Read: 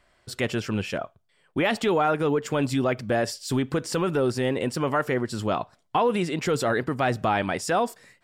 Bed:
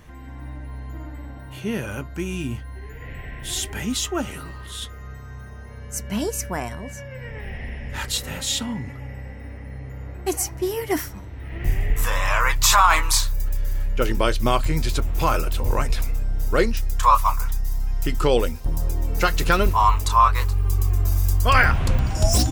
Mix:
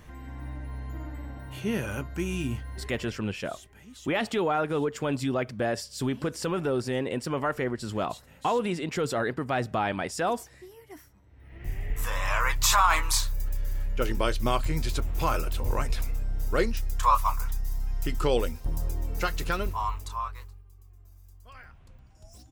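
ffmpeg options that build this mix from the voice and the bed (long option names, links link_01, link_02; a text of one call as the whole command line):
ffmpeg -i stem1.wav -i stem2.wav -filter_complex "[0:a]adelay=2500,volume=-4dB[link_01];[1:a]volume=15dB,afade=type=out:start_time=2.84:duration=0.39:silence=0.0891251,afade=type=in:start_time=11.22:duration=1.12:silence=0.133352,afade=type=out:start_time=18.75:duration=1.9:silence=0.0446684[link_02];[link_01][link_02]amix=inputs=2:normalize=0" out.wav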